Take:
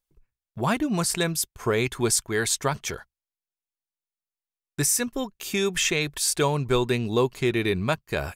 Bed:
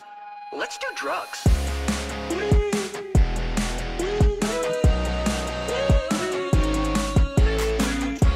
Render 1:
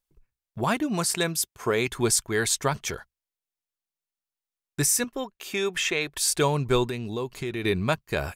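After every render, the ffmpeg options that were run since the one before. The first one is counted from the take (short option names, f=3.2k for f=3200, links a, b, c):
-filter_complex "[0:a]asettb=1/sr,asplit=3[a][b][c];[a]atrim=end=0.644[d];[b]atrim=start=0.64:end=1.88,asetpts=PTS-STARTPTS,afade=t=in:d=0.004:c=qsin,afade=t=out:st=1.236:d=0.004:c=qsin,highpass=f=180:p=1[e];[c]atrim=start=1.876[f];[d][e]acrossfade=d=0.004:c1=hsin:c2=qsin[g];[g][f]acrossfade=d=0.004:c1=qsin:c2=hsin,asettb=1/sr,asplit=3[h][i][j];[h]atrim=end=5.044[k];[i]atrim=start=5.04:end=6.17,asetpts=PTS-STARTPTS,afade=t=in:d=0.004:c=qsin,afade=t=out:st=1.126:d=0.004:c=qsin,bass=f=250:g=-11,treble=f=4k:g=-7[l];[j]atrim=start=6.166[m];[k][l]acrossfade=d=0.004:c1=hsin:c2=qsin[n];[n][m]acrossfade=d=0.004:c1=qsin:c2=hsin,asettb=1/sr,asplit=3[o][p][q];[o]atrim=end=6.864[r];[p]atrim=start=6.86:end=7.64,asetpts=PTS-STARTPTS,afade=t=in:d=0.004:c=qsin,afade=t=out:st=0.776:d=0.004:c=qsin,acompressor=threshold=-30dB:ratio=2.5:attack=3.2:release=140:knee=1:detection=peak[s];[q]atrim=start=7.636[t];[r][s]acrossfade=d=0.004:c1=hsin:c2=qsin[u];[u][t]acrossfade=d=0.004:c1=qsin:c2=hsin"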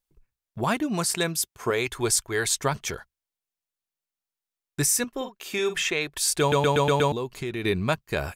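-filter_complex "[0:a]asettb=1/sr,asplit=3[a][b][c];[a]atrim=end=1.704[d];[b]atrim=start=1.7:end=2.46,asetpts=PTS-STARTPTS,afade=t=in:d=0.004:c=qsin,afade=t=out:st=0.756:d=0.004:c=qsin,equalizer=f=190:t=o:w=0.77:g=-11[e];[c]atrim=start=2.456[f];[d][e]acrossfade=d=0.004:c1=hsin:c2=qsin[g];[g][f]acrossfade=d=0.004:c1=qsin:c2=hsin,asettb=1/sr,asplit=3[h][i][j];[h]atrim=end=5.134[k];[i]atrim=start=5.13:end=5.82,asetpts=PTS-STARTPTS,afade=t=in:d=0.004:c=qsin,afade=t=out:st=0.686:d=0.004:c=qsin,asplit=2[l][m];[m]adelay=48,volume=-9.5dB[n];[l][n]amix=inputs=2:normalize=0,atrim=end_sample=30429[o];[j]atrim=start=5.816[p];[k][o]acrossfade=d=0.004:c1=hsin:c2=qsin[q];[q][p]acrossfade=d=0.004:c1=qsin:c2=hsin,asplit=7[r][s][t][u][v][w][x];[r]atrim=end=6.522[y];[s]atrim=start=6.398:end=6.522[z];[t]atrim=start=6.398:end=6.522[aa];[u]atrim=start=6.398:end=6.522[ab];[v]atrim=start=6.398:end=6.522[ac];[w]atrim=start=6.398:end=6.522[ad];[x]atrim=start=7.118[ae];[y][z]acrossfade=d=0.004:c1=hsin:c2=hsin[af];[af][aa]acrossfade=d=0.004:c1=hsin:c2=hsin[ag];[ag][ab]acrossfade=d=0.004:c1=hsin:c2=hsin[ah];[ah][ac]acrossfade=d=0.004:c1=hsin:c2=hsin[ai];[ai][ad]acrossfade=d=0.004:c1=hsin:c2=hsin[aj];[aj][ae]acrossfade=d=0.004:c1=hsin:c2=hsin"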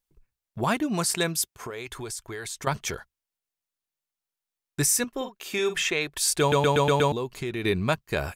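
-filter_complex "[0:a]asettb=1/sr,asplit=3[a][b][c];[a]atrim=end=1.504[d];[b]atrim=start=1.5:end=2.67,asetpts=PTS-STARTPTS,afade=t=in:d=0.004:c=qsin,afade=t=out:st=1.166:d=0.004:c=qsin,acompressor=threshold=-33dB:ratio=5:attack=3.2:release=140:knee=1:detection=peak[e];[c]atrim=start=2.666[f];[d][e]acrossfade=d=0.004:c1=hsin:c2=qsin[g];[g][f]acrossfade=d=0.004:c1=qsin:c2=hsin"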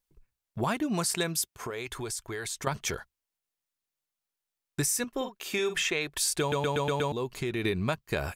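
-af "acompressor=threshold=-25dB:ratio=6"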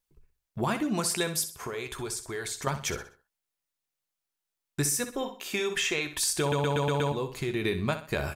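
-filter_complex "[0:a]asplit=2[a][b];[b]adelay=14,volume=-12dB[c];[a][c]amix=inputs=2:normalize=0,aecho=1:1:63|126|189|252:0.282|0.0986|0.0345|0.0121"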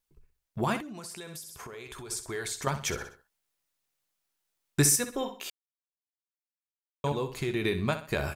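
-filter_complex "[0:a]asettb=1/sr,asplit=3[a][b][c];[a]atrim=end=0.804[d];[b]atrim=start=0.8:end=2.11,asetpts=PTS-STARTPTS,afade=t=in:d=0.004:c=qsin,afade=t=out:st=1.306:d=0.004:c=qsin,acompressor=threshold=-39dB:ratio=8:attack=3.2:release=140:knee=1:detection=peak[e];[c]atrim=start=2.106[f];[d][e]acrossfade=d=0.004:c1=hsin:c2=qsin[g];[g][f]acrossfade=d=0.004:c1=qsin:c2=hsin,asettb=1/sr,asplit=3[h][i][j];[h]atrim=end=3.014[k];[i]atrim=start=3.01:end=4.96,asetpts=PTS-STARTPTS,afade=t=in:d=0.004:c=qsin,afade=t=out:st=1.946:d=0.004:c=qsin,acontrast=30[l];[j]atrim=start=4.956[m];[k][l]acrossfade=d=0.004:c1=hsin:c2=qsin[n];[n][m]acrossfade=d=0.004:c1=qsin:c2=hsin,asplit=3[o][p][q];[o]atrim=end=5.5,asetpts=PTS-STARTPTS,afade=t=out:st=5.496:d=0.004:c=hsin[r];[p]atrim=start=5.5:end=7.04,asetpts=PTS-STARTPTS,volume=0[s];[q]atrim=start=7.04,asetpts=PTS-STARTPTS,afade=t=in:d=0.004:c=hsin[t];[r][s][t]concat=n=3:v=0:a=1"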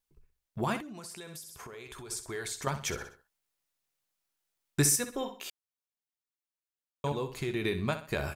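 -af "volume=-2.5dB"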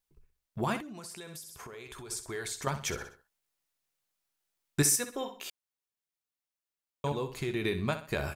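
-filter_complex "[0:a]asettb=1/sr,asplit=3[a][b][c];[a]atrim=end=4.824[d];[b]atrim=start=4.82:end=5.36,asetpts=PTS-STARTPTS,afade=t=in:d=0.004:c=qsin,afade=t=out:st=0.536:d=0.004:c=qsin,lowshelf=f=150:g=-11[e];[c]atrim=start=5.356[f];[d][e]acrossfade=d=0.004:c1=hsin:c2=qsin[g];[g][f]acrossfade=d=0.004:c1=qsin:c2=hsin"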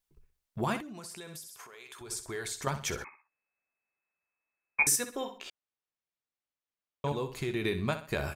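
-filter_complex "[0:a]asettb=1/sr,asplit=3[a][b][c];[a]atrim=end=1.474[d];[b]atrim=start=1.47:end=2.01,asetpts=PTS-STARTPTS,afade=t=in:d=0.004:c=qsin,afade=t=out:st=0.536:d=0.004:c=qsin,highpass=f=1k:p=1[e];[c]atrim=start=2.006[f];[d][e]acrossfade=d=0.004:c1=hsin:c2=qsin[g];[g][f]acrossfade=d=0.004:c1=qsin:c2=hsin,asettb=1/sr,asplit=3[h][i][j];[h]atrim=end=3.044[k];[i]atrim=start=3.04:end=4.87,asetpts=PTS-STARTPTS,afade=t=in:d=0.004:c=qsin,afade=t=out:st=1.826:d=0.004:c=qsin,lowpass=f=2.2k:t=q:w=0.5098,lowpass=f=2.2k:t=q:w=0.6013,lowpass=f=2.2k:t=q:w=0.9,lowpass=f=2.2k:t=q:w=2.563,afreqshift=-2600[l];[j]atrim=start=4.866[m];[k][l]acrossfade=d=0.004:c1=hsin:c2=qsin[n];[n][m]acrossfade=d=0.004:c1=qsin:c2=hsin,asettb=1/sr,asplit=3[o][p][q];[o]atrim=end=5.384[r];[p]atrim=start=5.38:end=7.08,asetpts=PTS-STARTPTS,afade=t=in:d=0.004:c=qsin,afade=t=out:st=1.696:d=0.004:c=qsin,adynamicsmooth=sensitivity=4.5:basefreq=4.7k[s];[q]atrim=start=7.076[t];[r][s]acrossfade=d=0.004:c1=hsin:c2=qsin[u];[u][t]acrossfade=d=0.004:c1=qsin:c2=hsin"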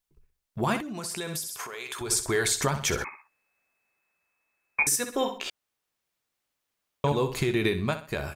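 -af "dynaudnorm=f=140:g=13:m=12.5dB,alimiter=limit=-14dB:level=0:latency=1:release=350"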